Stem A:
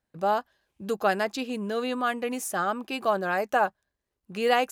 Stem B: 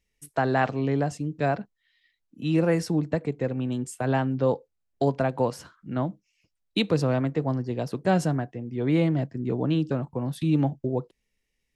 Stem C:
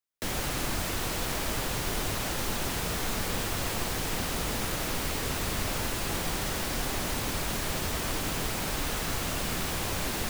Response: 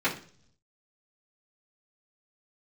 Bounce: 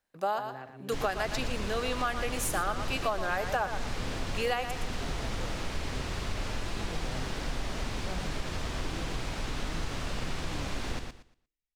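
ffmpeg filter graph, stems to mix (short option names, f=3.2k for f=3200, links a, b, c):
-filter_complex "[0:a]highpass=f=650:p=1,volume=2dB,asplit=2[a][b];[b]volume=-11dB[c];[1:a]flanger=delay=5.6:depth=3.2:regen=-89:speed=1.2:shape=triangular,volume=-17.5dB,asplit=2[d][e];[e]volume=-8dB[f];[2:a]lowpass=5.7k,acrusher=bits=9:mix=0:aa=0.000001,adelay=700,volume=-5.5dB,asplit=2[g][h];[h]volume=-6dB[i];[c][f][i]amix=inputs=3:normalize=0,aecho=0:1:117|234|351|468:1|0.23|0.0529|0.0122[j];[a][d][g][j]amix=inputs=4:normalize=0,lowshelf=f=62:g=9,acompressor=threshold=-26dB:ratio=6"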